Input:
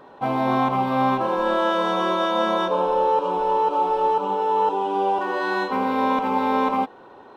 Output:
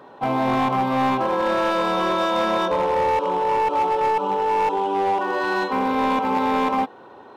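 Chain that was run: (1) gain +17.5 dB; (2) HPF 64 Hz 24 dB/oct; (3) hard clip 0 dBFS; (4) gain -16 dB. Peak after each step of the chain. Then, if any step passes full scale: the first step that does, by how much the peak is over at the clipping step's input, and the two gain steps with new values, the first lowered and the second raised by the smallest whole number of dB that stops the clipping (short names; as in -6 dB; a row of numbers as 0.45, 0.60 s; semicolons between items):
+8.5, +8.0, 0.0, -16.0 dBFS; step 1, 8.0 dB; step 1 +9.5 dB, step 4 -8 dB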